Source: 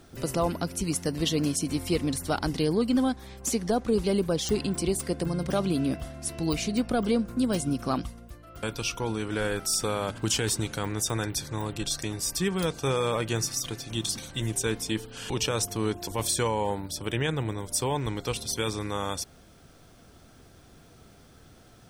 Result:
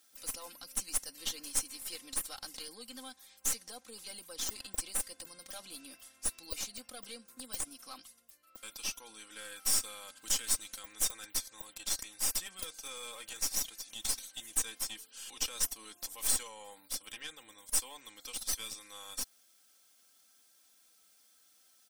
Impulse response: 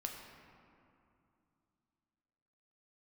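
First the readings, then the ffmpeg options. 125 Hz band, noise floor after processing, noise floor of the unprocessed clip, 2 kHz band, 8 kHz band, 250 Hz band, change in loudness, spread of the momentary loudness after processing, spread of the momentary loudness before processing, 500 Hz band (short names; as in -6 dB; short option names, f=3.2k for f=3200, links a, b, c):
under -25 dB, -66 dBFS, -54 dBFS, -11.0 dB, -2.0 dB, -27.5 dB, -7.5 dB, 15 LU, 6 LU, -24.5 dB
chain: -af "aderivative,aeval=exprs='0.211*(cos(1*acos(clip(val(0)/0.211,-1,1)))-cos(1*PI/2))+0.0237*(cos(8*acos(clip(val(0)/0.211,-1,1)))-cos(8*PI/2))':c=same,aecho=1:1:3.8:0.67,volume=-4dB"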